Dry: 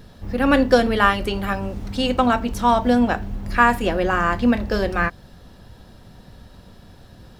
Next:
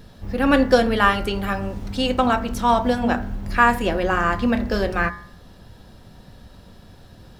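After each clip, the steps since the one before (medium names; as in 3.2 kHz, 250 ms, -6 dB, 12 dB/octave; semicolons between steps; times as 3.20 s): de-hum 60.69 Hz, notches 37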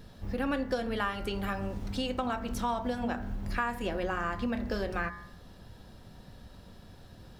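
compression 4:1, threshold -24 dBFS, peak gain reduction 12.5 dB; trim -5.5 dB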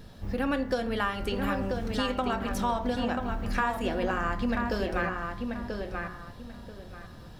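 filtered feedback delay 986 ms, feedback 25%, low-pass 3.8 kHz, level -4.5 dB; trim +2.5 dB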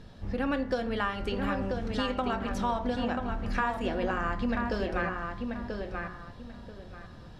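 distance through air 59 m; trim -1 dB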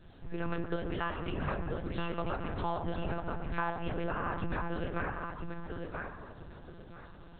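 frequency shift -76 Hz; tape echo 124 ms, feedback 78%, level -10.5 dB, low-pass 2 kHz; monotone LPC vocoder at 8 kHz 170 Hz; trim -4.5 dB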